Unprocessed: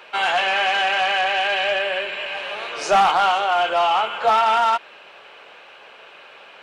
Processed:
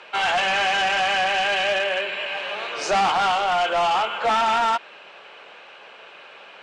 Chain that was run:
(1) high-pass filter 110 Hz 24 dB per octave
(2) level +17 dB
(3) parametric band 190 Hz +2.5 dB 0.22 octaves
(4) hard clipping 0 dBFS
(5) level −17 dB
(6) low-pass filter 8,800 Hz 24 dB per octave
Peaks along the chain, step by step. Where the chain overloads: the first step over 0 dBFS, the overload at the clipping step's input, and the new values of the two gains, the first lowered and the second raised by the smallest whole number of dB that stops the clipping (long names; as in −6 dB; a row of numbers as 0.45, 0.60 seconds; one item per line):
−7.0, +10.0, +10.0, 0.0, −17.0, −16.0 dBFS
step 2, 10.0 dB
step 2 +7 dB, step 5 −7 dB